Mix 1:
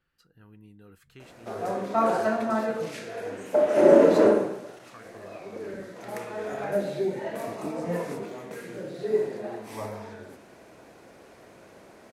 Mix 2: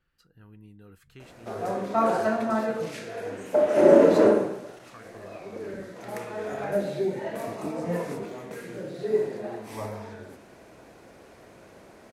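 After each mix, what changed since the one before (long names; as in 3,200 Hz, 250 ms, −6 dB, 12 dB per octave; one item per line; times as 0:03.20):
master: add low-shelf EQ 90 Hz +7 dB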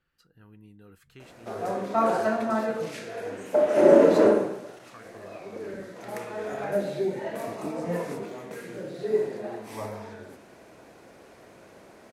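master: add low-shelf EQ 90 Hz −7 dB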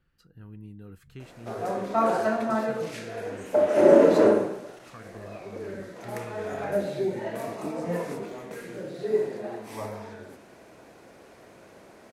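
speech: add low-shelf EQ 300 Hz +11 dB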